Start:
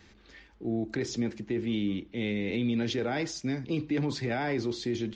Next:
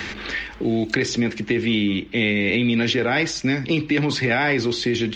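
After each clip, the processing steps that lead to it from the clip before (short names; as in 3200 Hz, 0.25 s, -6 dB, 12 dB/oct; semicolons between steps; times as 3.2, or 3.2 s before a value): bell 2300 Hz +8.5 dB 1.9 oct; three-band squash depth 70%; gain +8 dB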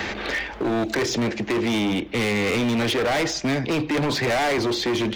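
bell 640 Hz +11 dB 1.3 oct; hard clip -20 dBFS, distortion -7 dB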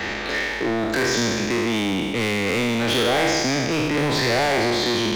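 spectral trails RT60 2.08 s; gain -2 dB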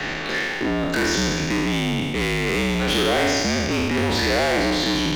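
frequency shift -50 Hz; whine 2800 Hz -41 dBFS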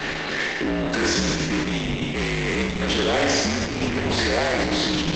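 Opus 10 kbps 48000 Hz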